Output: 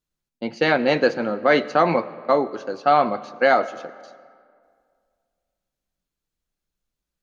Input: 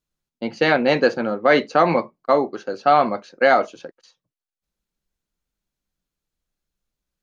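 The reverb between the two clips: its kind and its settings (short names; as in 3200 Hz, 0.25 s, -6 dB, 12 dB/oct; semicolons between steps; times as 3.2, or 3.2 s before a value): digital reverb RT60 2.1 s, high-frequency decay 0.6×, pre-delay 55 ms, DRR 17.5 dB; gain -1.5 dB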